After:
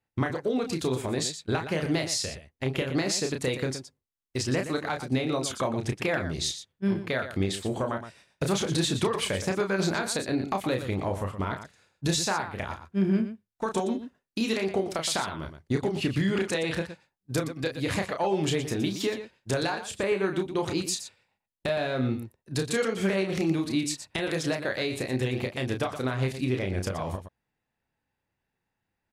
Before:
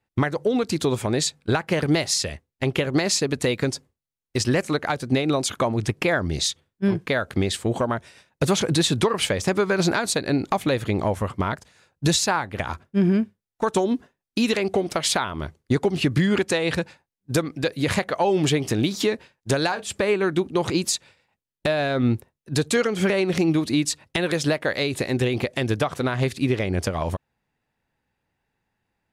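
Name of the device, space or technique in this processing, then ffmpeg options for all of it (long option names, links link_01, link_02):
slapback doubling: -filter_complex "[0:a]asplit=3[link_01][link_02][link_03];[link_02]adelay=31,volume=-5.5dB[link_04];[link_03]adelay=119,volume=-10.5dB[link_05];[link_01][link_04][link_05]amix=inputs=3:normalize=0,volume=-7dB"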